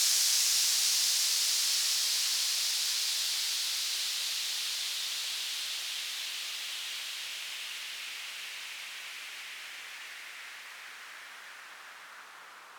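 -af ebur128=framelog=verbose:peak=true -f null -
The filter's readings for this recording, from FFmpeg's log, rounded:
Integrated loudness:
  I:         -29.2 LUFS
  Threshold: -40.4 LUFS
Loudness range:
  LRA:        16.0 LU
  Threshold: -51.4 LUFS
  LRA low:   -42.2 LUFS
  LRA high:  -26.3 LUFS
True peak:
  Peak:      -14.2 dBFS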